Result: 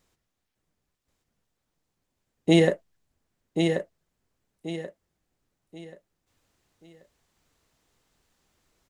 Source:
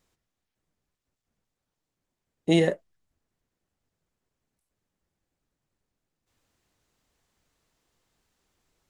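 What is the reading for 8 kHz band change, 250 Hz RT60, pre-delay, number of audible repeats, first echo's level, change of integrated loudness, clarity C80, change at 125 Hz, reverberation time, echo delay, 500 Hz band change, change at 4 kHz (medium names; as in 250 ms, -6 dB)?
+3.5 dB, no reverb, no reverb, 3, -5.5 dB, -1.5 dB, no reverb, +3.5 dB, no reverb, 1083 ms, +3.5 dB, +3.5 dB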